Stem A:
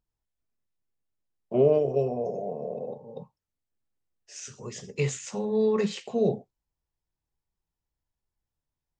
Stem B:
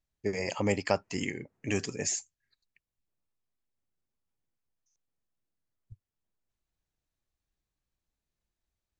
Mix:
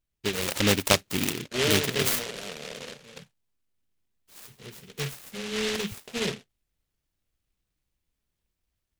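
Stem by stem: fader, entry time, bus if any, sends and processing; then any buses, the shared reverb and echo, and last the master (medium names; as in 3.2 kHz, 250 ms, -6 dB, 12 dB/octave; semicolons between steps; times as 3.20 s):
-9.5 dB, 0.00 s, no send, vibrato 0.85 Hz 16 cents
+2.0 dB, 0.00 s, no send, none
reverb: none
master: level rider gain up to 4 dB; delay time shaken by noise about 2.6 kHz, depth 0.3 ms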